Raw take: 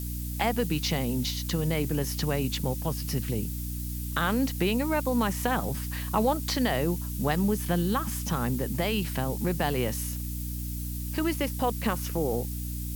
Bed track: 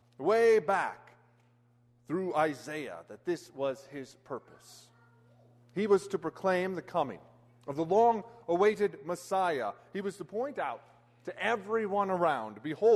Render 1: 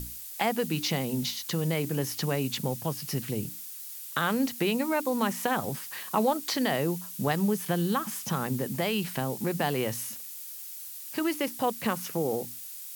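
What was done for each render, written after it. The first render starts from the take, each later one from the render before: hum notches 60/120/180/240/300 Hz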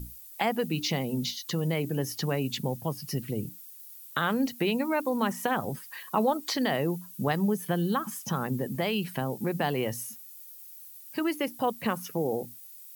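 noise reduction 12 dB, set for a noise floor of -42 dBFS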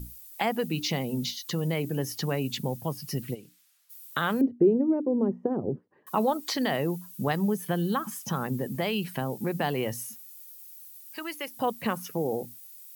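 3.34–3.89 s: band-pass filter 2.7 kHz -> 940 Hz, Q 0.56; 4.41–6.07 s: resonant low-pass 390 Hz, resonance Q 3.1; 10.52–11.57 s: high-pass 1.1 kHz 6 dB/octave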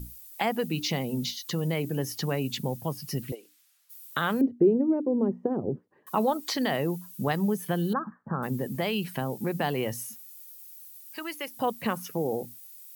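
3.32–4.00 s: high-pass 330 Hz 24 dB/octave; 7.93–8.43 s: Chebyshev low-pass 1.7 kHz, order 6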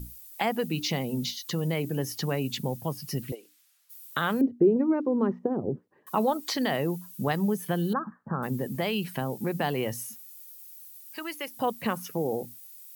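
4.76–5.39 s: high-order bell 2.5 kHz +13.5 dB 2.9 oct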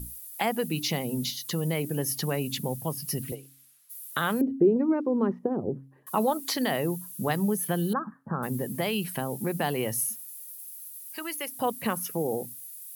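peaking EQ 11 kHz +12.5 dB 0.5 oct; de-hum 135.1 Hz, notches 2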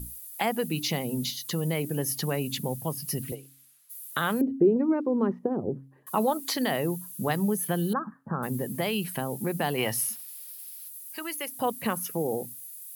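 9.78–10.89 s: time-frequency box 630–5700 Hz +8 dB; band-stop 5.5 kHz, Q 30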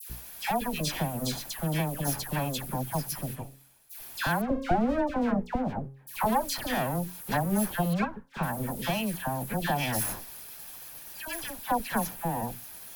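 comb filter that takes the minimum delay 1.2 ms; phase dispersion lows, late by 99 ms, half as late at 1.5 kHz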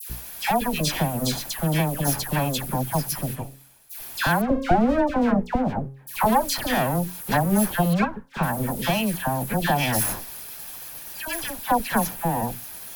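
trim +6.5 dB

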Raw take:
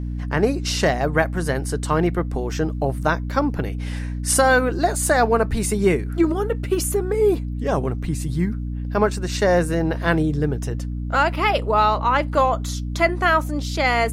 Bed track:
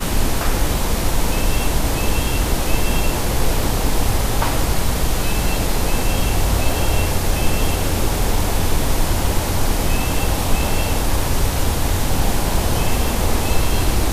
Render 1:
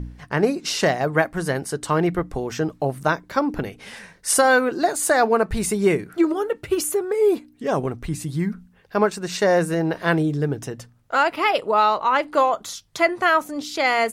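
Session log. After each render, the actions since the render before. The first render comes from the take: de-hum 60 Hz, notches 5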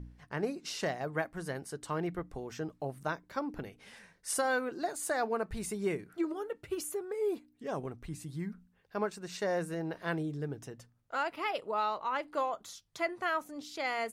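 trim -14.5 dB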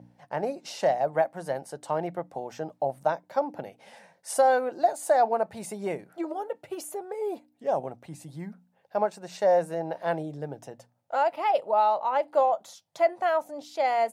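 high-pass 120 Hz 24 dB/octave; high-order bell 690 Hz +13 dB 1 oct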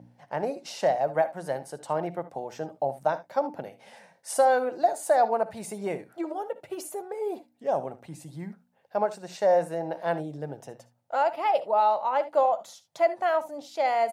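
early reflections 59 ms -17.5 dB, 75 ms -17.5 dB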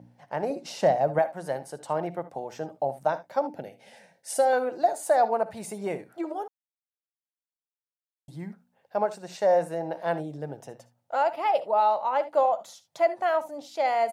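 0.50–1.19 s: bass shelf 330 Hz +9.5 dB; 3.47–4.53 s: peaking EQ 1.1 kHz -12 dB 0.53 oct; 6.48–8.28 s: mute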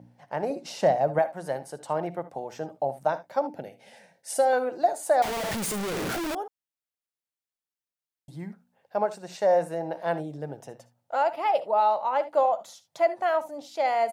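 5.22–6.35 s: one-bit comparator

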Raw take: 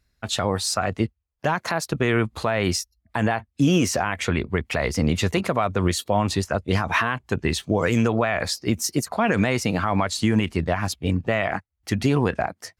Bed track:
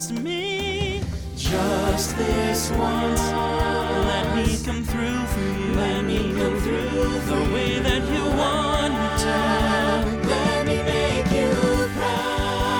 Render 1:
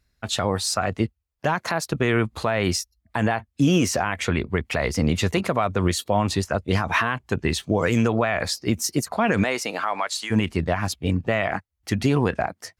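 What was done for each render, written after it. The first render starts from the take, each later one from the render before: 9.43–10.30 s: high-pass 320 Hz -> 980 Hz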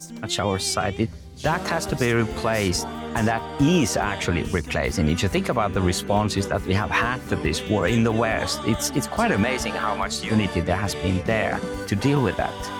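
add bed track -10 dB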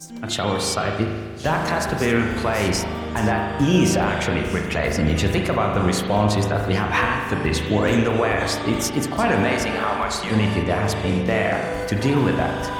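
spring tank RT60 1.6 s, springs 38 ms, chirp 50 ms, DRR 1.5 dB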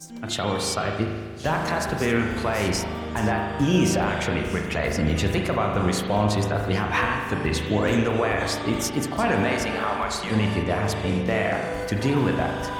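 trim -3 dB

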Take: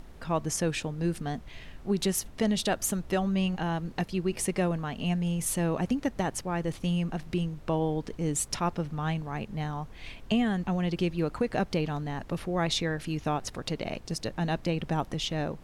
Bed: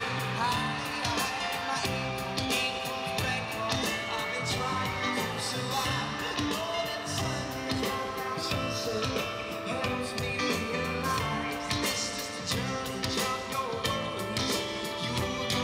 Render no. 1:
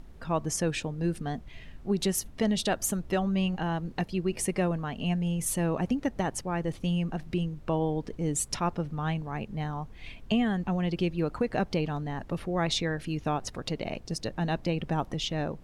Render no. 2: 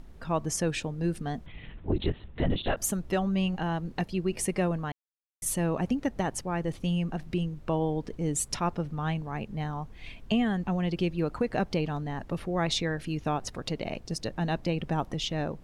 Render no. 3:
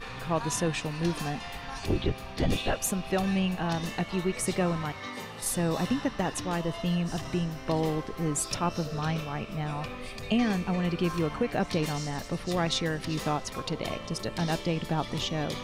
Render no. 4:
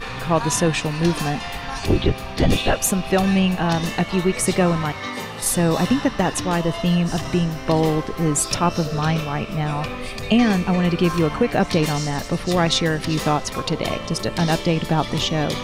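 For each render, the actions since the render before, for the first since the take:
noise reduction 6 dB, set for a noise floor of -47 dBFS
1.46–2.77 s: LPC vocoder at 8 kHz whisper; 4.92–5.42 s: mute
add bed -8.5 dB
trim +9.5 dB

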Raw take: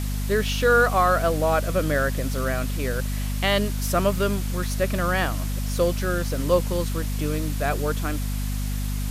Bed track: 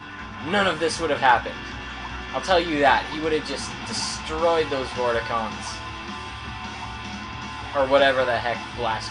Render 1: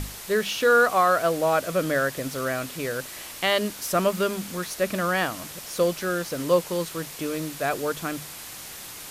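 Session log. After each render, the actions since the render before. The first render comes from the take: hum notches 50/100/150/200/250 Hz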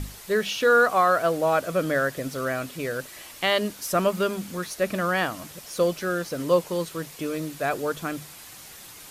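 noise reduction 6 dB, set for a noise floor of -40 dBFS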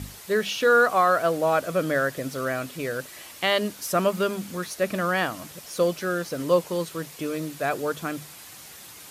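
high-pass 64 Hz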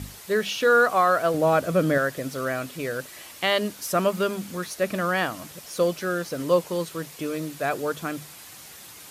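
1.34–1.98 s: bass shelf 330 Hz +8.5 dB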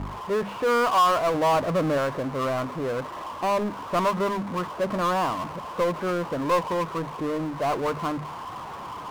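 four-pole ladder low-pass 1.1 kHz, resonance 75%; power-law waveshaper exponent 0.5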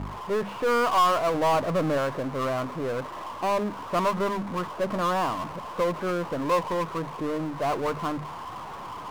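partial rectifier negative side -3 dB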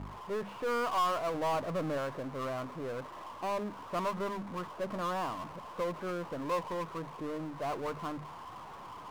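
trim -9 dB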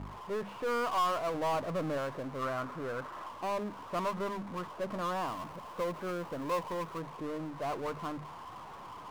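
2.42–3.29 s: peaking EQ 1.4 kHz +8 dB 0.54 oct; 5.28–7.01 s: treble shelf 11 kHz +6 dB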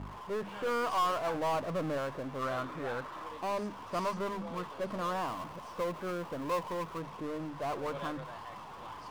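add bed track -26.5 dB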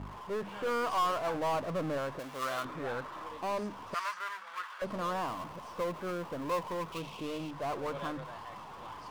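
2.19–2.65 s: tilt EQ +3 dB/octave; 3.94–4.82 s: resonant high-pass 1.5 kHz, resonance Q 2.6; 6.92–7.51 s: resonant high shelf 2.2 kHz +6.5 dB, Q 3

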